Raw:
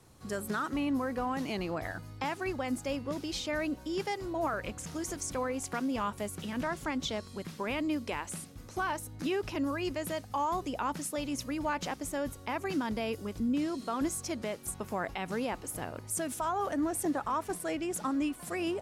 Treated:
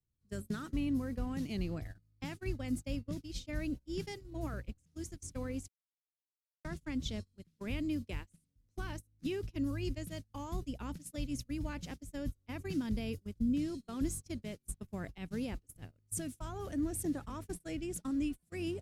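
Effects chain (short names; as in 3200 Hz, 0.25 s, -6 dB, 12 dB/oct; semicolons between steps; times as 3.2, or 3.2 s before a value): gate -35 dBFS, range -31 dB; passive tone stack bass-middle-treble 10-0-1; 5.68–6.65 requantised 6-bit, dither none; gain +16.5 dB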